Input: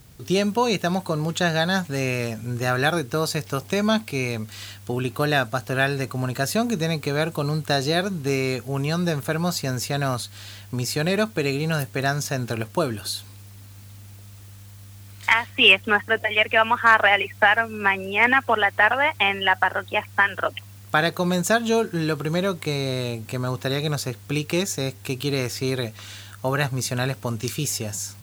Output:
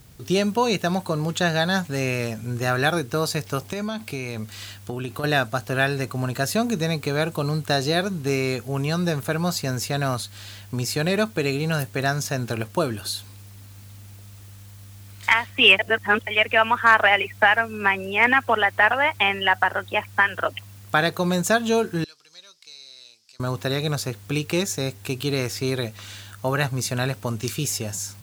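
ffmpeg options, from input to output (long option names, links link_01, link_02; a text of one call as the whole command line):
ffmpeg -i in.wav -filter_complex "[0:a]asettb=1/sr,asplit=3[link_01][link_02][link_03];[link_01]atrim=end=3.664[link_04];[link_02]atrim=start=3.66:end=5.24,asetpts=PTS-STARTPTS,afade=type=in:duration=0.004:curve=qsin,afade=type=out:start_time=1.576:duration=0.004:curve=qsin,acompressor=threshold=-24dB:ratio=12:attack=3.2:release=140:knee=1:detection=peak[link_05];[link_03]atrim=start=5.236[link_06];[link_04][link_05]acrossfade=duration=0.004:curve1=hsin:curve2=qsin[link_07];[link_07][link_06]acrossfade=duration=0.004:curve1=qsin:curve2=hsin,asettb=1/sr,asplit=3[link_08][link_09][link_10];[link_08]atrim=end=22.044[link_11];[link_09]atrim=start=22.04:end=23.4,asetpts=PTS-STARTPTS,afade=type=in:duration=0.004:curve=qsin,afade=type=out:start_time=1.356:duration=0.004:curve=qsin,bandpass=frequency=5100:width_type=q:width=5.5[link_12];[link_10]atrim=start=23.396[link_13];[link_11][link_12]acrossfade=duration=0.004:curve1=hsin:curve2=qsin[link_14];[link_14][link_13]acrossfade=duration=0.004:curve1=qsin:curve2=hsin,asplit=3[link_15][link_16][link_17];[link_15]atrim=end=15.792[link_18];[link_16]atrim=start=15.788:end=16.272,asetpts=PTS-STARTPTS,areverse[link_19];[link_17]atrim=start=16.268[link_20];[link_18][link_19]acrossfade=duration=0.004:curve1=hsin:curve2=hsin[link_21];[link_21][link_20]acrossfade=duration=0.004:curve1=hsin:curve2=hsin" out.wav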